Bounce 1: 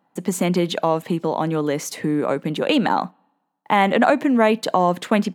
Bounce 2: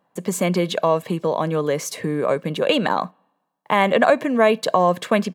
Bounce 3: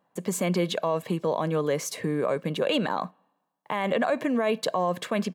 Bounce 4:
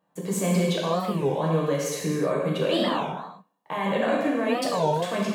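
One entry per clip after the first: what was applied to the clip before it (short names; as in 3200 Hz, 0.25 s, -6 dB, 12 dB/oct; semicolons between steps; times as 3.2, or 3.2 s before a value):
comb 1.8 ms, depth 44%
limiter -11.5 dBFS, peak gain reduction 9 dB; gain -4 dB
non-linear reverb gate 0.39 s falling, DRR -4.5 dB; record warp 33 1/3 rpm, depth 250 cents; gain -4.5 dB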